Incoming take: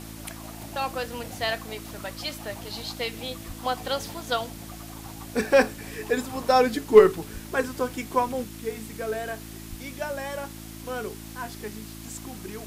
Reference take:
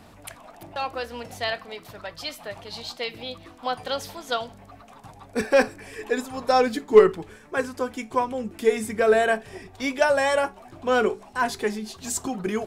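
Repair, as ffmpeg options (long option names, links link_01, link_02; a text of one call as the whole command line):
ffmpeg -i in.wav -filter_complex "[0:a]bandreject=frequency=54.9:width_type=h:width=4,bandreject=frequency=109.8:width_type=h:width=4,bandreject=frequency=164.7:width_type=h:width=4,bandreject=frequency=219.6:width_type=h:width=4,bandreject=frequency=274.5:width_type=h:width=4,bandreject=frequency=329.4:width_type=h:width=4,asplit=3[link_01][link_02][link_03];[link_01]afade=type=out:start_time=3.47:duration=0.02[link_04];[link_02]highpass=frequency=140:width=0.5412,highpass=frequency=140:width=1.3066,afade=type=in:start_time=3.47:duration=0.02,afade=type=out:start_time=3.59:duration=0.02[link_05];[link_03]afade=type=in:start_time=3.59:duration=0.02[link_06];[link_04][link_05][link_06]amix=inputs=3:normalize=0,asplit=3[link_07][link_08][link_09];[link_07]afade=type=out:start_time=7.33:duration=0.02[link_10];[link_08]highpass=frequency=140:width=0.5412,highpass=frequency=140:width=1.3066,afade=type=in:start_time=7.33:duration=0.02,afade=type=out:start_time=7.45:duration=0.02[link_11];[link_09]afade=type=in:start_time=7.45:duration=0.02[link_12];[link_10][link_11][link_12]amix=inputs=3:normalize=0,asplit=3[link_13][link_14][link_15];[link_13]afade=type=out:start_time=9.69:duration=0.02[link_16];[link_14]highpass=frequency=140:width=0.5412,highpass=frequency=140:width=1.3066,afade=type=in:start_time=9.69:duration=0.02,afade=type=out:start_time=9.81:duration=0.02[link_17];[link_15]afade=type=in:start_time=9.81:duration=0.02[link_18];[link_16][link_17][link_18]amix=inputs=3:normalize=0,afwtdn=0.0056,asetnsamples=nb_out_samples=441:pad=0,asendcmd='8.44 volume volume 12dB',volume=0dB" out.wav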